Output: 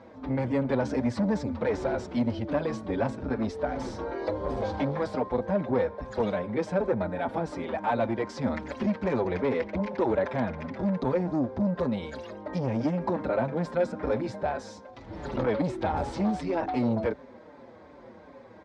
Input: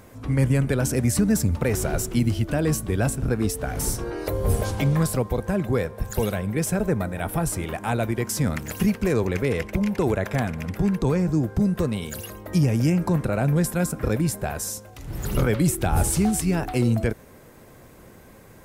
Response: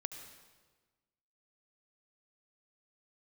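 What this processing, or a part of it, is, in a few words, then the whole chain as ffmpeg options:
barber-pole flanger into a guitar amplifier: -filter_complex "[0:a]asplit=2[link_01][link_02];[link_02]adelay=5.6,afreqshift=-2.6[link_03];[link_01][link_03]amix=inputs=2:normalize=1,asoftclip=type=tanh:threshold=-21.5dB,highpass=85,equalizer=frequency=100:width_type=q:width=4:gain=-7,equalizer=frequency=150:width_type=q:width=4:gain=-9,equalizer=frequency=260:width_type=q:width=4:gain=6,equalizer=frequency=560:width_type=q:width=4:gain=8,equalizer=frequency=900:width_type=q:width=4:gain=8,equalizer=frequency=2800:width_type=q:width=4:gain=-7,lowpass=frequency=4300:width=0.5412,lowpass=frequency=4300:width=1.3066"

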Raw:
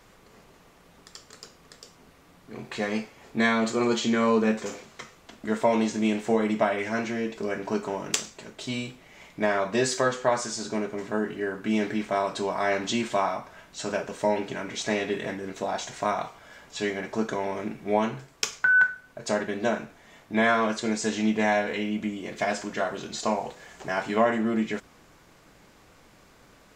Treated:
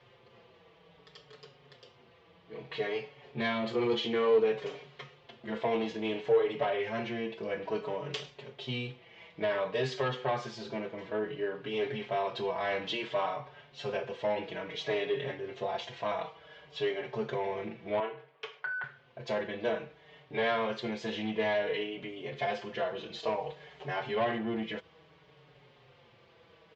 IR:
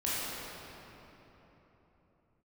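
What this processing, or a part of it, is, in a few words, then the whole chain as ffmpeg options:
barber-pole flanger into a guitar amplifier: -filter_complex "[0:a]asplit=2[link_01][link_02];[link_02]adelay=5.2,afreqshift=-0.58[link_03];[link_01][link_03]amix=inputs=2:normalize=1,asoftclip=type=tanh:threshold=-22dB,highpass=94,equalizer=frequency=140:width_type=q:width=4:gain=9,equalizer=frequency=200:width_type=q:width=4:gain=-8,equalizer=frequency=280:width_type=q:width=4:gain=-8,equalizer=frequency=460:width_type=q:width=4:gain=7,equalizer=frequency=1400:width_type=q:width=4:gain=-5,equalizer=frequency=3100:width_type=q:width=4:gain=6,lowpass=frequency=4100:width=0.5412,lowpass=frequency=4100:width=1.3066,asettb=1/sr,asplit=3[link_04][link_05][link_06];[link_04]atrim=end=18.004[link_07];[link_05]atrim=start=18:end=18.84,asetpts=PTS-STARTPTS,afade=type=in:duration=0.004:curve=qsin,afade=type=out:start_time=0.836:duration=0.004:curve=qsin,acrossover=split=360 2700:gain=0.141 1 0.126[link_08][link_09][link_10];[link_08][link_09][link_10]amix=inputs=3:normalize=0[link_11];[link_06]atrim=start=18.836[link_12];[link_07][link_11]acrossfade=duration=0.004:curve1=hsin:curve2=qsin[link_13];[link_13][link_12]acrossfade=duration=0.004:curve1=qsin:curve2=hsin,volume=-1.5dB"

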